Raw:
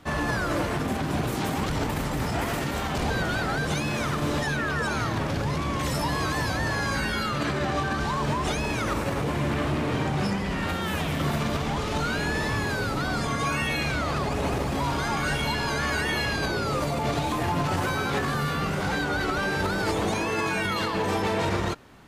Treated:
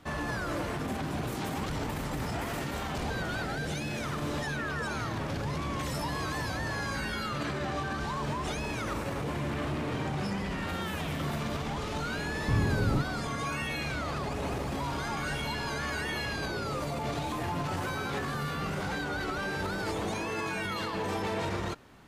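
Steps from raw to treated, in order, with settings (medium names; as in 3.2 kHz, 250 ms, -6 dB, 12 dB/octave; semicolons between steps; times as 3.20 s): 3.45–4.05 s: peaking EQ 1.1 kHz -10.5 dB 0.33 oct; peak limiter -22 dBFS, peak gain reduction 3.5 dB; 12.48–13.02 s: bass shelf 330 Hz +12 dB; trim -4 dB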